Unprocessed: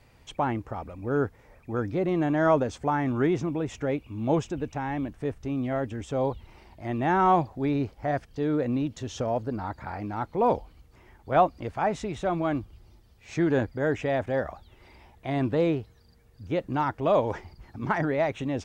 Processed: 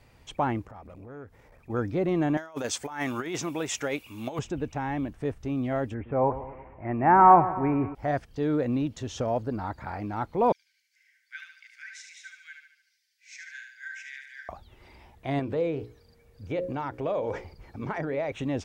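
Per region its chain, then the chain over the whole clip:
0.65–1.7 compressor 5:1, threshold -39 dBFS + core saturation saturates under 550 Hz
2.37–4.39 tilt +4 dB/oct + negative-ratio compressor -31 dBFS, ratio -0.5
5.94–7.95 steep low-pass 2400 Hz 48 dB/oct + dynamic EQ 930 Hz, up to +8 dB, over -36 dBFS, Q 1.4 + split-band echo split 1100 Hz, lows 0.115 s, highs 0.18 s, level -13.5 dB
10.52–14.49 rippled Chebyshev high-pass 1500 Hz, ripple 9 dB + feedback echo 73 ms, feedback 48%, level -5.5 dB
15.39–18.32 notches 60/120/180/240/300/360/420/480/540 Hz + compressor 4:1, threshold -30 dBFS + small resonant body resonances 490/2300 Hz, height 8 dB, ringing for 20 ms
whole clip: dry

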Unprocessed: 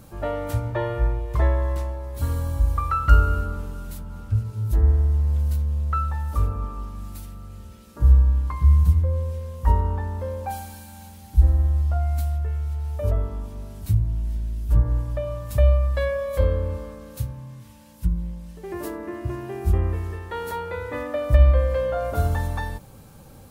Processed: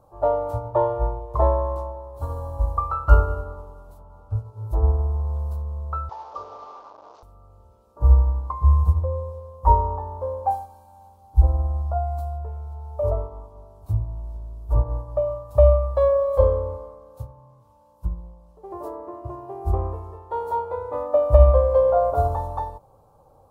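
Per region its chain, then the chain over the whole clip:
6.09–7.23 delta modulation 32 kbps, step -29.5 dBFS + HPF 340 Hz
whole clip: EQ curve 110 Hz 0 dB, 220 Hz -8 dB, 440 Hz +7 dB, 680 Hz +12 dB, 1100 Hz +11 dB, 1800 Hz -16 dB, 4400 Hz -9 dB; upward expander 1.5:1, over -34 dBFS; gain +1.5 dB

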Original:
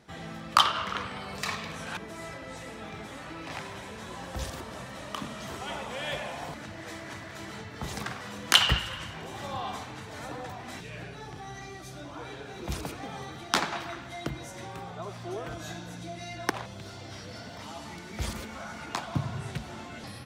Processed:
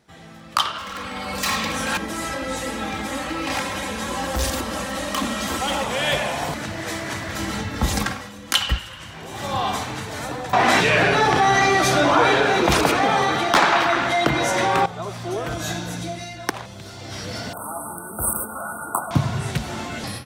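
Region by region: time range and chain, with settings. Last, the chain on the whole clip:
0.78–5.84 comb 3.7 ms, depth 69% + overloaded stage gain 30.5 dB
7.28–8.78 low shelf 150 Hz +9 dB + comb 3.7 ms, depth 48%
10.53–14.86 overdrive pedal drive 21 dB, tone 1600 Hz, clips at -4.5 dBFS + fast leveller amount 50%
17.53–19.11 brick-wall FIR band-stop 1500–8000 Hz + tilt +3 dB/oct
whole clip: high shelf 6800 Hz +6 dB; AGC gain up to 15 dB; gain -3 dB

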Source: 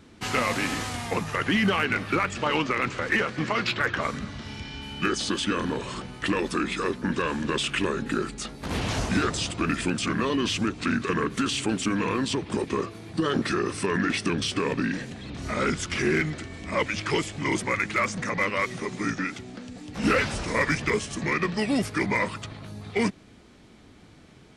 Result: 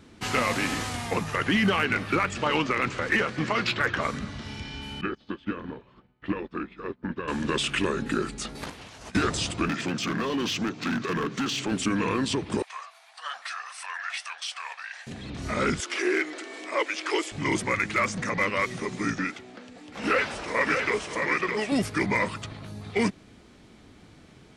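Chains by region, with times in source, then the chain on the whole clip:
5.01–7.28 air absorption 340 m + upward expander 2.5:1, over -42 dBFS
8.55–9.15 low shelf 420 Hz -8.5 dB + negative-ratio compressor -39 dBFS, ratio -0.5
9.68–11.72 Chebyshev band-pass 130–6400 Hz, order 3 + hard clip -23.5 dBFS
12.62–15.07 elliptic high-pass 710 Hz, stop band 50 dB + flange 1.6 Hz, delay 1.1 ms, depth 7.6 ms, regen +61%
15.8–17.32 Chebyshev high-pass 320 Hz, order 4 + upward compressor, threshold -32 dBFS
19.31–21.72 tone controls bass -14 dB, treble -7 dB + echo 0.611 s -4.5 dB
whole clip: dry

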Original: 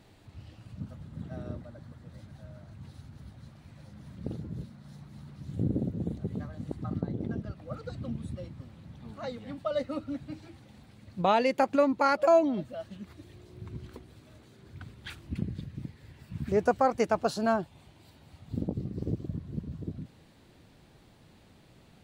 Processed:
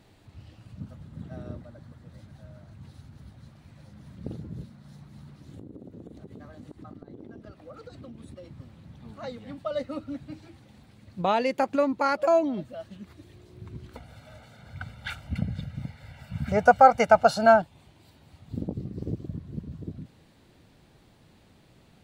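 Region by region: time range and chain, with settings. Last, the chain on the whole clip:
5.36–8.51 resonant low shelf 230 Hz -6 dB, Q 1.5 + compressor 16:1, threshold -39 dBFS
13.95–17.62 bell 1200 Hz +7.5 dB 2.9 oct + comb 1.4 ms, depth 91%
whole clip: dry

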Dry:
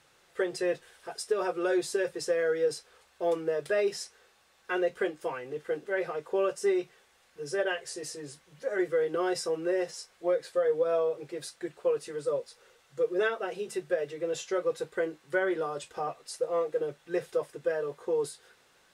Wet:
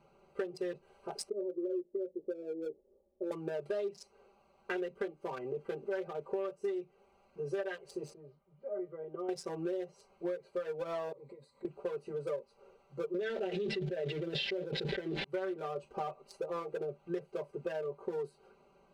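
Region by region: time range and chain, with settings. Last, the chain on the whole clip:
1.29–3.31 ladder low-pass 470 Hz, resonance 65% + comb 3.5 ms, depth 87%
8.13–9.29 LPF 3500 Hz 24 dB/oct + notch 2600 Hz, Q 8.6 + resonator 610 Hz, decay 0.19 s, mix 80%
11.12–11.65 ripple EQ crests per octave 1, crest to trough 13 dB + compressor 4:1, threshold -51 dBFS
13.14–15.24 steep low-pass 5300 Hz + fixed phaser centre 2800 Hz, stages 4 + fast leveller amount 100%
whole clip: Wiener smoothing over 25 samples; comb 5.1 ms, depth 87%; compressor 6:1, threshold -37 dBFS; gain +2.5 dB

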